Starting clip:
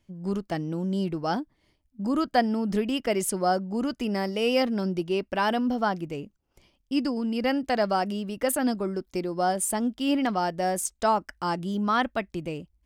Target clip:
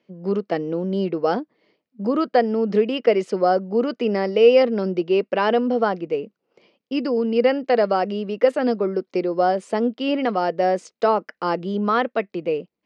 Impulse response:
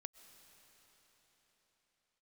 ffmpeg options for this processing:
-filter_complex "[0:a]asplit=2[s0][s1];[s1]alimiter=limit=0.133:level=0:latency=1:release=408,volume=1.12[s2];[s0][s2]amix=inputs=2:normalize=0,highpass=f=200:w=0.5412,highpass=f=200:w=1.3066,equalizer=f=280:t=q:w=4:g=-5,equalizer=f=470:t=q:w=4:g=10,equalizer=f=890:t=q:w=4:g=-4,equalizer=f=1600:t=q:w=4:g=-3,equalizer=f=3400:t=q:w=4:g=-6,lowpass=f=4300:w=0.5412,lowpass=f=4300:w=1.3066"

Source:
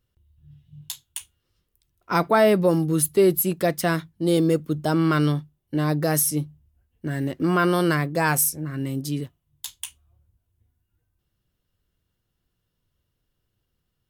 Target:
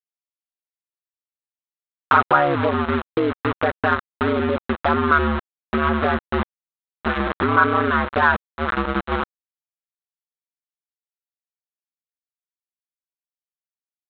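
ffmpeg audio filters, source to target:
-filter_complex "[0:a]lowpass=1800,dynaudnorm=f=650:g=5:m=6.68,aresample=8000,aeval=exprs='val(0)*gte(abs(val(0)),0.126)':c=same,aresample=44100,aeval=exprs='val(0)*sin(2*PI*73*n/s)':c=same,asplit=2[s0][s1];[s1]alimiter=limit=0.282:level=0:latency=1,volume=0.708[s2];[s0][s2]amix=inputs=2:normalize=0,acompressor=threshold=0.224:ratio=6,asoftclip=type=tanh:threshold=0.447,equalizer=f=1300:w=1.3:g=14.5,volume=0.631"

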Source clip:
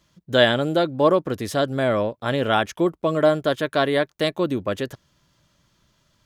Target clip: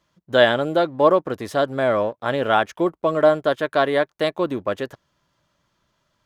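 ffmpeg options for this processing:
-filter_complex "[0:a]asplit=2[s0][s1];[s1]aeval=exprs='sgn(val(0))*max(abs(val(0))-0.0141,0)':c=same,volume=0.596[s2];[s0][s2]amix=inputs=2:normalize=0,equalizer=f=890:t=o:w=2.9:g=8.5,volume=0.355"

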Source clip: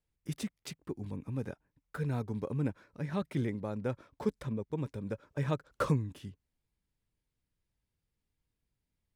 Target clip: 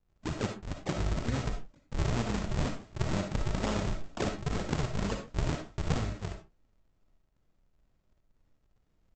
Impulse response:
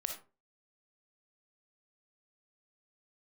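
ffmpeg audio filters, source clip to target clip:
-filter_complex "[0:a]highshelf=f=3000:g=-3.5,asplit=2[s0][s1];[s1]alimiter=level_in=1.68:limit=0.0631:level=0:latency=1:release=66,volume=0.596,volume=1.41[s2];[s0][s2]amix=inputs=2:normalize=0,acompressor=threshold=0.0282:ratio=16,asplit=4[s3][s4][s5][s6];[s4]asetrate=22050,aresample=44100,atempo=2,volume=0.891[s7];[s5]asetrate=37084,aresample=44100,atempo=1.18921,volume=0.447[s8];[s6]asetrate=88200,aresample=44100,atempo=0.5,volume=0.794[s9];[s3][s7][s8][s9]amix=inputs=4:normalize=0,aresample=16000,acrusher=samples=37:mix=1:aa=0.000001:lfo=1:lforange=59.2:lforate=2.1,aresample=44100[s10];[1:a]atrim=start_sample=2205,afade=t=out:st=0.21:d=0.01,atrim=end_sample=9702[s11];[s10][s11]afir=irnorm=-1:irlink=0"

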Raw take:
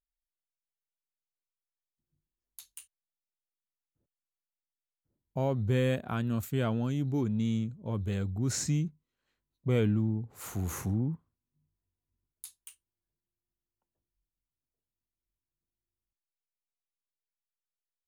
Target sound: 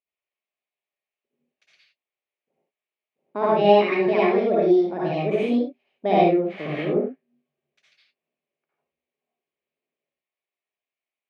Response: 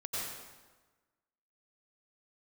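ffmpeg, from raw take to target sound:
-filter_complex "[0:a]highpass=190,equalizer=f=260:t=q:w=4:g=6,equalizer=f=380:t=q:w=4:g=8,equalizer=f=600:t=q:w=4:g=-3,equalizer=f=920:t=q:w=4:g=-6,equalizer=f=1500:t=q:w=4:g=8,lowpass=f=2100:w=0.5412,lowpass=f=2100:w=1.3066[s0];[1:a]atrim=start_sample=2205,afade=t=out:st=0.33:d=0.01,atrim=end_sample=14994[s1];[s0][s1]afir=irnorm=-1:irlink=0,asetrate=70560,aresample=44100,volume=2.24"

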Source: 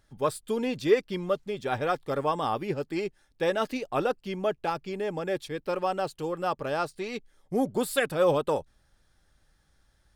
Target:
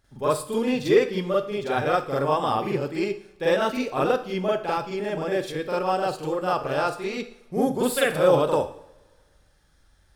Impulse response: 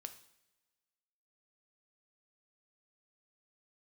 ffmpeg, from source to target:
-filter_complex "[0:a]asplit=2[s0][s1];[1:a]atrim=start_sample=2205,adelay=44[s2];[s1][s2]afir=irnorm=-1:irlink=0,volume=3.35[s3];[s0][s3]amix=inputs=2:normalize=0,volume=0.794"

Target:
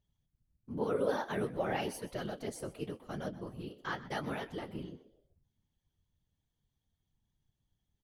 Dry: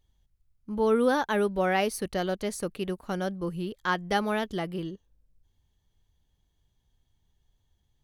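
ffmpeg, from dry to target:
-filter_complex "[0:a]flanger=delay=9.6:depth=8:regen=45:speed=0.93:shape=triangular,afftfilt=real='hypot(re,im)*cos(2*PI*random(0))':imag='hypot(re,im)*sin(2*PI*random(1))':win_size=512:overlap=0.75,asplit=4[s0][s1][s2][s3];[s1]adelay=125,afreqshift=74,volume=0.141[s4];[s2]adelay=250,afreqshift=148,volume=0.0525[s5];[s3]adelay=375,afreqshift=222,volume=0.0193[s6];[s0][s4][s5][s6]amix=inputs=4:normalize=0"

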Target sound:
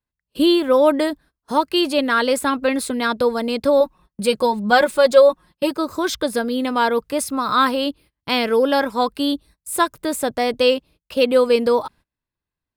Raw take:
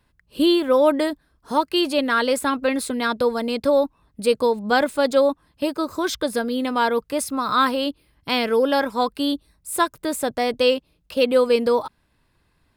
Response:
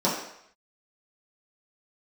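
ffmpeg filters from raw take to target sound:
-filter_complex "[0:a]agate=range=0.0562:threshold=0.00501:ratio=16:detection=peak,asettb=1/sr,asplit=3[s0][s1][s2];[s0]atrim=end=3.804[s3];[s1]atrim=start=3.8:end=5.71,asetpts=PTS-STARTPTS,afade=t=in:d=0.004:c=qsin,afade=t=out:st=1.906:d=0.004:c=qsin,aecho=1:1:5.5:0.75,atrim=end_sample=84231[s4];[s2]atrim=start=5.706[s5];[s3][s4]acrossfade=d=0.004:c1=hsin:c2=qsin[s6];[s6][s5]acrossfade=d=0.004:c1=qsin:c2=hsin,volume=1.26"

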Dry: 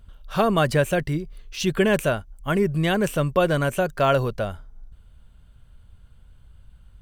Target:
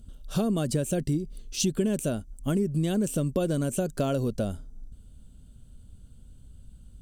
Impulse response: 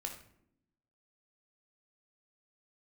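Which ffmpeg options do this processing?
-af "equalizer=f=250:t=o:w=1:g=10,equalizer=f=1000:t=o:w=1:g=-9,equalizer=f=2000:t=o:w=1:g=-11,equalizer=f=8000:t=o:w=1:g=10,acompressor=threshold=0.0708:ratio=6"

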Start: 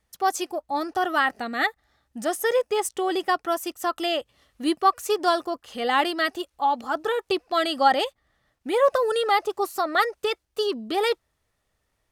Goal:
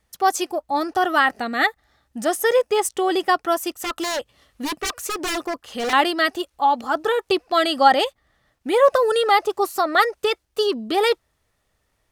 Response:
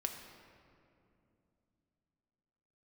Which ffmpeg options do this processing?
-filter_complex "[0:a]asettb=1/sr,asplit=3[s0][s1][s2];[s0]atrim=end=3.744[s3];[s1]atrim=start=3.74:end=5.93,asetpts=PTS-STARTPTS,afade=t=in:d=0.004:c=qsin,afade=t=out:st=2.186:d=0.004:c=qsin,aeval=exprs='0.0631*(abs(mod(val(0)/0.0631+3,4)-2)-1)':c=same[s4];[s2]atrim=start=5.926[s5];[s3][s4]acrossfade=d=0.004:c1=hsin:c2=qsin[s6];[s6][s5]acrossfade=d=0.004:c1=qsin:c2=hsin,volume=1.68"

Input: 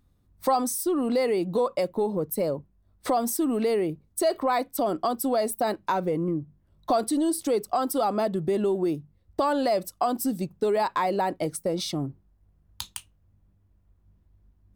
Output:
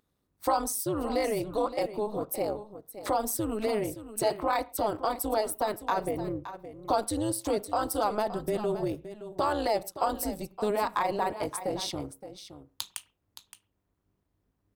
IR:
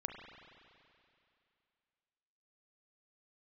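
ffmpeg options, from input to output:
-filter_complex "[0:a]highpass=f=390:p=1,tremolo=f=210:d=0.857,aecho=1:1:569:0.237,asplit=2[s0][s1];[1:a]atrim=start_sample=2205,atrim=end_sample=6174[s2];[s1][s2]afir=irnorm=-1:irlink=0,volume=0.282[s3];[s0][s3]amix=inputs=2:normalize=0"

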